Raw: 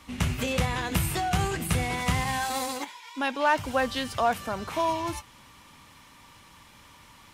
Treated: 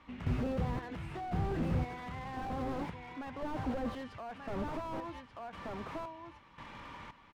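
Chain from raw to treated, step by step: LPF 2300 Hz 12 dB/oct; bell 87 Hz -4.5 dB 1.6 oct; echo 1.184 s -12 dB; in parallel at +1 dB: compressor, threshold -38 dBFS, peak gain reduction 18 dB; on the sum: limiter -21 dBFS, peak gain reduction 9.5 dB; step gate "..xxxx.." 114 bpm -12 dB; slew limiter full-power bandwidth 9 Hz

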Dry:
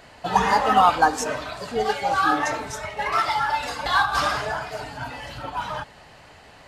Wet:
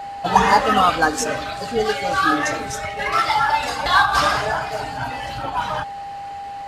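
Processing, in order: 0.59–3.3 bell 870 Hz -13 dB 0.44 oct; whine 800 Hz -34 dBFS; gain +5 dB

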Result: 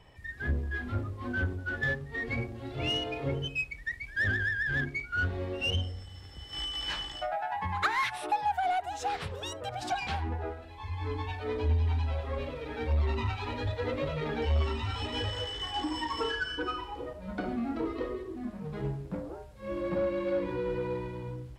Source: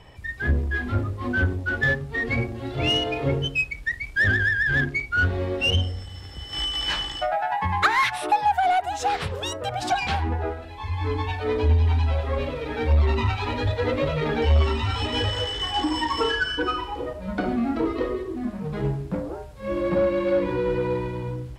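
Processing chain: pre-echo 86 ms -21.5 dB; gain -8.5 dB

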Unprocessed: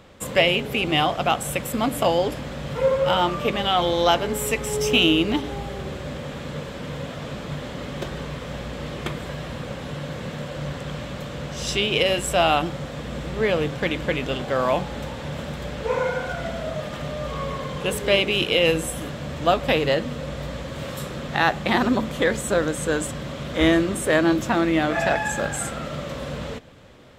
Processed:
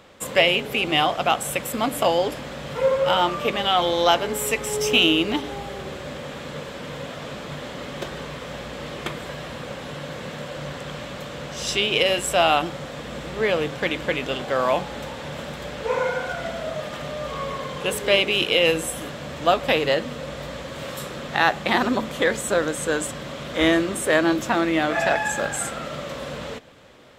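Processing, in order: low shelf 210 Hz -10 dB; gain +1.5 dB

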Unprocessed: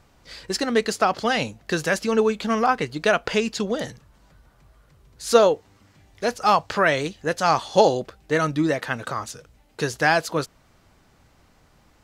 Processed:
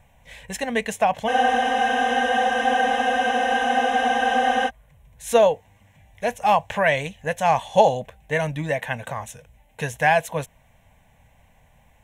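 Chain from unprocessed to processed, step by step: fixed phaser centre 1300 Hz, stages 6; spectral freeze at 1.3, 3.38 s; gain +3 dB

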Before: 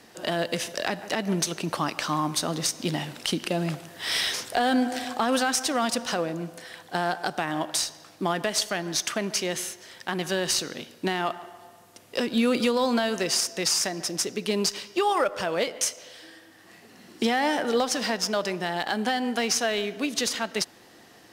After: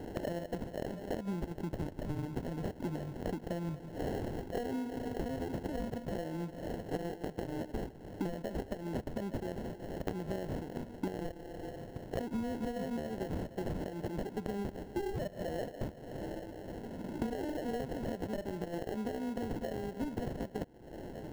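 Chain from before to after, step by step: sample-rate reducer 1200 Hz, jitter 0%; tilt shelf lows +6.5 dB; compressor 12:1, threshold -38 dBFS, peak gain reduction 23.5 dB; gain +4 dB

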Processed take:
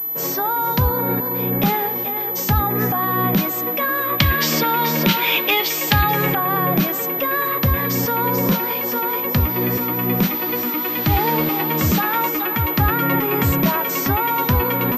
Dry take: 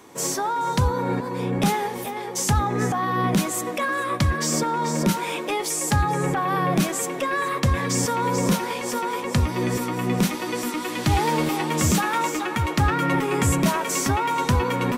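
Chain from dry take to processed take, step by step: 4.18–6.35 bell 3100 Hz +13 dB 1.6 oct; pulse-width modulation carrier 12000 Hz; gain +2.5 dB

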